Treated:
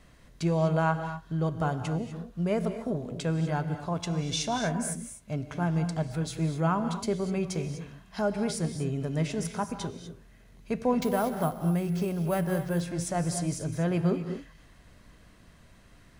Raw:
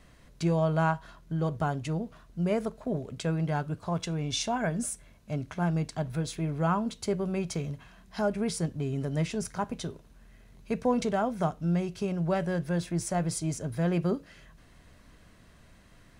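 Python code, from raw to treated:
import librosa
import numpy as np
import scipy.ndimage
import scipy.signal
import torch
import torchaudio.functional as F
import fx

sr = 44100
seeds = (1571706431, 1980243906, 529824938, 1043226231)

y = fx.rev_gated(x, sr, seeds[0], gate_ms=270, shape='rising', drr_db=8.5)
y = fx.resample_bad(y, sr, factor=4, down='none', up='hold', at=(11.02, 12.81))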